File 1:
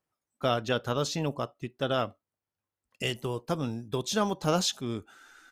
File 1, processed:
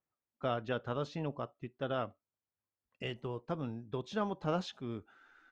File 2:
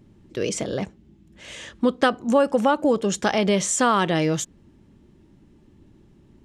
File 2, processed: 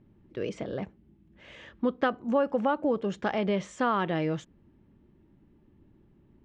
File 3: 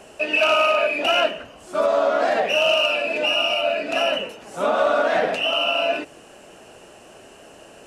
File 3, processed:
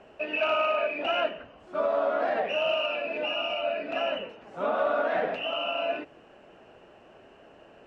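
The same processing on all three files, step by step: LPF 2500 Hz 12 dB/oct; gain -7 dB

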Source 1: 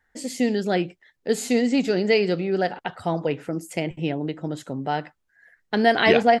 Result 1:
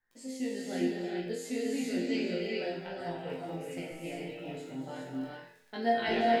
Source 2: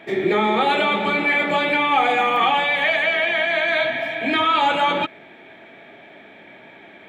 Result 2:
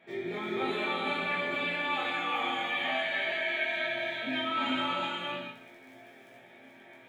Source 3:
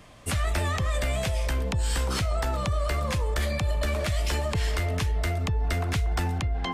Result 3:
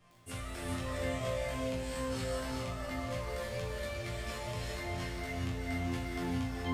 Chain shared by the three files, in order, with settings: dynamic EQ 1100 Hz, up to -5 dB, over -33 dBFS, Q 1.1; crackle 14/s -31 dBFS; resonator bank F2 sus4, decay 0.61 s; chorus 1 Hz, delay 17 ms, depth 2.4 ms; non-linear reverb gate 0.45 s rising, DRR -1 dB; gain +6 dB

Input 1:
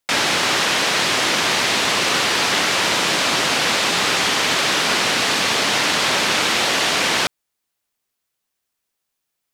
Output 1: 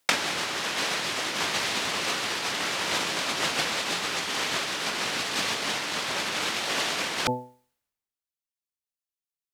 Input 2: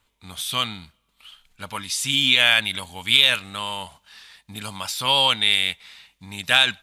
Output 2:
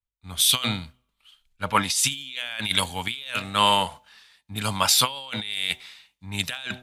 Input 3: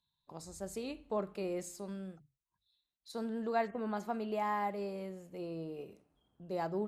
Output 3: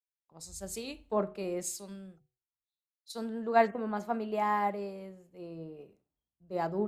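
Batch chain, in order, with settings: de-hum 124.8 Hz, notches 7; limiter -10.5 dBFS; negative-ratio compressor -28 dBFS, ratio -0.5; three-band expander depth 100%; gain +3 dB

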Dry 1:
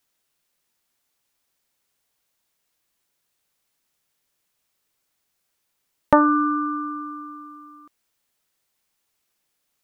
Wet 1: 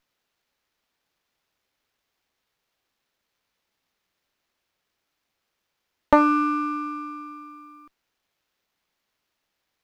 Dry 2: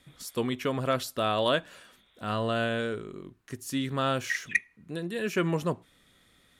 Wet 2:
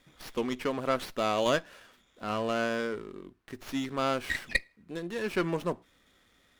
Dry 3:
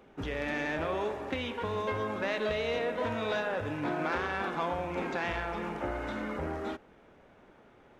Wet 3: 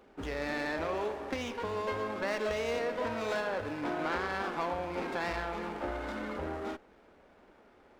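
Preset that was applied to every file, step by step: bell 130 Hz -10.5 dB 0.73 oct; running maximum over 5 samples; gain -1 dB

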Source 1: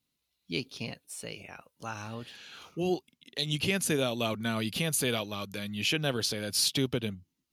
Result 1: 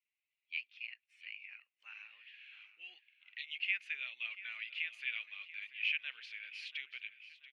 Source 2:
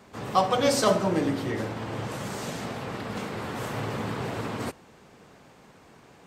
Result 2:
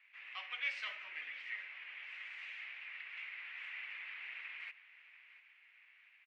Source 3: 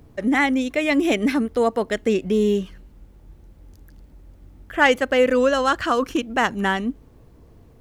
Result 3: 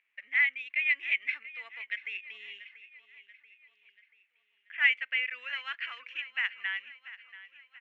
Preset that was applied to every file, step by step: Butterworth band-pass 2300 Hz, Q 2.9; feedback echo 0.685 s, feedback 50%, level -16 dB

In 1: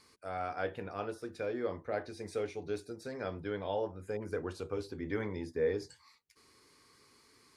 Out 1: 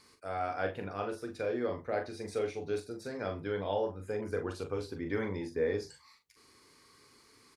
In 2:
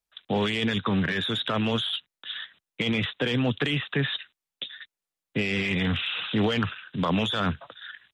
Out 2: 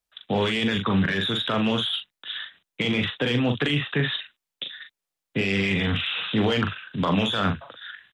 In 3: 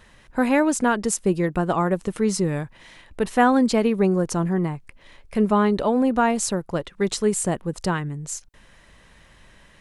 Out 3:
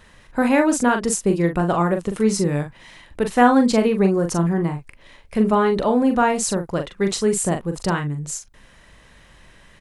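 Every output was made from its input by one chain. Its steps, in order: doubler 41 ms -6.5 dB; gain +1.5 dB

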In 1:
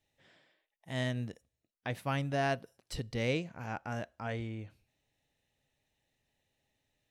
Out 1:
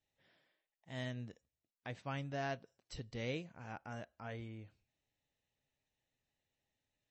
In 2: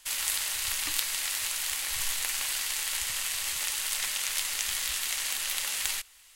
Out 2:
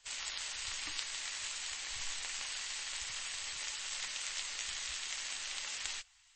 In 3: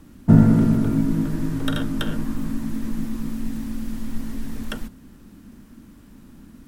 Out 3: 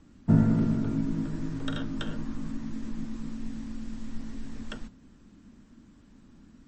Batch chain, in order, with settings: gain -8 dB; MP3 32 kbps 24000 Hz

